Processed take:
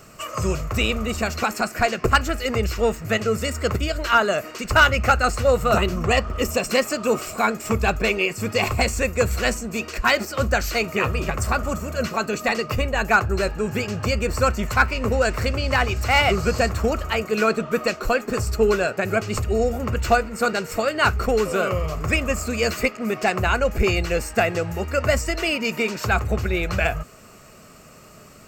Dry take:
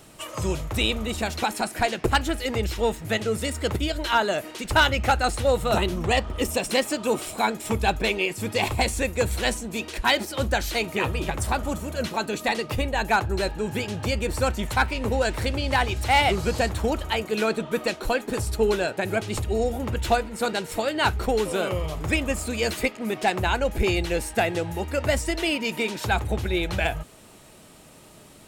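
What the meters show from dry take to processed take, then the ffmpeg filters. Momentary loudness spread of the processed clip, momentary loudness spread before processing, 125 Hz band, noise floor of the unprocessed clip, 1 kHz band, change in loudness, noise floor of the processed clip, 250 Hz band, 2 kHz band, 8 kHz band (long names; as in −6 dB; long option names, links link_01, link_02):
6 LU, 5 LU, +3.5 dB, −49 dBFS, +2.5 dB, +3.0 dB, −46 dBFS, +2.0 dB, +4.5 dB, +2.0 dB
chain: -af "superequalizer=6b=0.562:9b=0.562:10b=1.78:13b=0.355:16b=0.251,volume=3.5dB"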